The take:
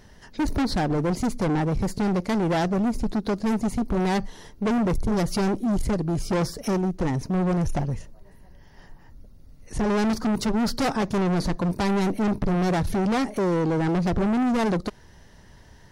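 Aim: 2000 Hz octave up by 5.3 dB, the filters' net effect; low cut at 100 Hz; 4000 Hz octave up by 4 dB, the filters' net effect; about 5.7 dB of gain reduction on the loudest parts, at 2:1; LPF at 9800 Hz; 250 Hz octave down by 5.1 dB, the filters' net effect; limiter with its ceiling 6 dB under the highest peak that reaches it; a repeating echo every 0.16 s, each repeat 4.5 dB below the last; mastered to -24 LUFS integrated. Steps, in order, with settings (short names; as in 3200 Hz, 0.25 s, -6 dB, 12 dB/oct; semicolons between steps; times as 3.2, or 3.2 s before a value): HPF 100 Hz; LPF 9800 Hz; bell 250 Hz -7 dB; bell 2000 Hz +6 dB; bell 4000 Hz +3.5 dB; compressor 2:1, threshold -30 dBFS; limiter -21.5 dBFS; feedback echo 0.16 s, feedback 60%, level -4.5 dB; gain +7 dB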